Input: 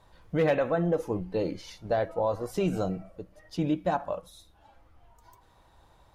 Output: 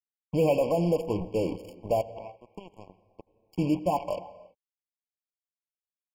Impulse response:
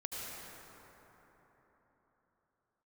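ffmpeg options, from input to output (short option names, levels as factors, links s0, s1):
-filter_complex "[0:a]asettb=1/sr,asplit=3[s0][s1][s2];[s0]atrim=end=2.014[s3];[s1]atrim=start=2.01:end=3.56,asetpts=PTS-STARTPTS,afade=t=in:d=0.004:c=qsin,afade=t=out:st=1.546:d=0.004:c=qsin,acompressor=threshold=0.00708:ratio=5[s4];[s2]atrim=start=3.556[s5];[s3][s4]acrossfade=d=0.004:c1=hsin:c2=qsin[s6];[s6][s5]acrossfade=d=0.004:c1=qsin:c2=hsin,acrusher=bits=5:mix=0:aa=0.5,asplit=2[s7][s8];[1:a]atrim=start_sample=2205,afade=t=out:st=0.4:d=0.01,atrim=end_sample=18081,lowpass=4400[s9];[s8][s9]afir=irnorm=-1:irlink=0,volume=0.237[s10];[s7][s10]amix=inputs=2:normalize=0,afftfilt=real='re*eq(mod(floor(b*sr/1024/1100),2),0)':imag='im*eq(mod(floor(b*sr/1024/1100),2),0)':win_size=1024:overlap=0.75"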